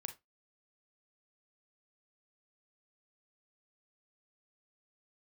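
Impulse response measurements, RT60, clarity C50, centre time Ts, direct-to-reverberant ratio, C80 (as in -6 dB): 0.20 s, 13.0 dB, 9 ms, 6.0 dB, 23.5 dB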